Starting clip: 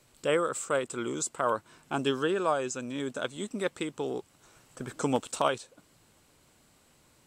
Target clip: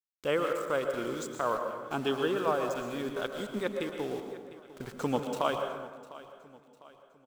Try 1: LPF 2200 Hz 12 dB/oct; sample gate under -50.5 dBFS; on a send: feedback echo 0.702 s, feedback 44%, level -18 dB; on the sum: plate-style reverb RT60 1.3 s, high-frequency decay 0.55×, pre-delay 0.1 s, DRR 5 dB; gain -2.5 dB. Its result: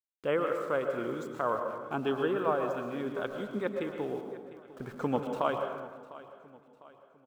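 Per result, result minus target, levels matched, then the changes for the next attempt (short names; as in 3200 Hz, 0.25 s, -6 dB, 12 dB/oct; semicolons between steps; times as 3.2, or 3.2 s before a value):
4000 Hz band -7.0 dB; sample gate: distortion -10 dB
change: LPF 4900 Hz 12 dB/oct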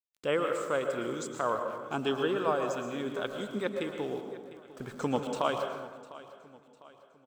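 sample gate: distortion -10 dB
change: sample gate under -40.5 dBFS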